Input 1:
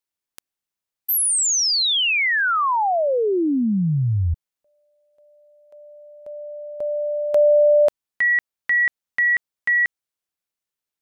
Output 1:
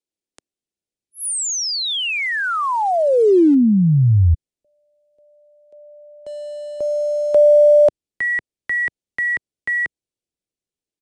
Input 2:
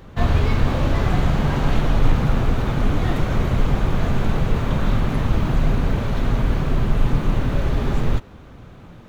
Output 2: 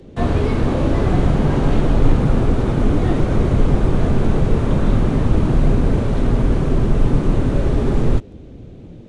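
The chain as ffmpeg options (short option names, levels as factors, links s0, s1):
-filter_complex "[0:a]equalizer=f=350:w=0.69:g=11,acrossover=split=130|740|1900[s0][s1][s2][s3];[s0]dynaudnorm=f=600:g=3:m=3.16[s4];[s2]acrusher=bits=6:mix=0:aa=0.000001[s5];[s4][s1][s5][s3]amix=inputs=4:normalize=0,aresample=22050,aresample=44100,volume=0.708"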